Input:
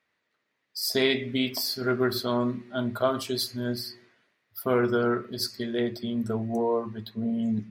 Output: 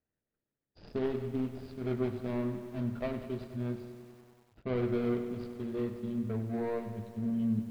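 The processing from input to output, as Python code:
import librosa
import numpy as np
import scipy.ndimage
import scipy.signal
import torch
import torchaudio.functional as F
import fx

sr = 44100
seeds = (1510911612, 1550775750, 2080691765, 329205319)

p1 = scipy.signal.medfilt(x, 41)
p2 = scipy.signal.sosfilt(scipy.signal.butter(4, 4200.0, 'lowpass', fs=sr, output='sos'), p1)
p3 = fx.low_shelf(p2, sr, hz=150.0, db=11.5)
p4 = p3 + fx.echo_single(p3, sr, ms=159, db=-21.0, dry=0)
p5 = fx.echo_crushed(p4, sr, ms=96, feedback_pct=80, bits=8, wet_db=-12)
y = p5 * librosa.db_to_amplitude(-8.5)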